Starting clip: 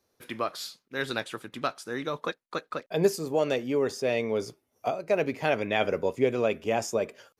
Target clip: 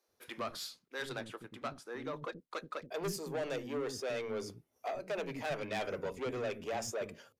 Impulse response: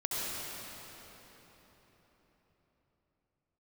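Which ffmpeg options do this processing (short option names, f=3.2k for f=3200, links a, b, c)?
-filter_complex "[0:a]asettb=1/sr,asplit=3[a][b][c];[a]atrim=end=1.094[d];[b]atrim=start=1.09:end=2.39,asetpts=PTS-STARTPTS,afade=t=in:d=0.004:c=qsin,afade=t=out:st=1.296:d=0.004:c=qsin,highshelf=f=2k:g=-8[e];[c]atrim=start=2.386[f];[d][e]acrossfade=d=0.004:c1=hsin:c2=qsin[g];[g][f]acrossfade=d=0.004:c1=qsin:c2=hsin,asoftclip=type=tanh:threshold=-27dB,acrossover=split=300[h][i];[h]adelay=80[j];[j][i]amix=inputs=2:normalize=0,volume=-4.5dB"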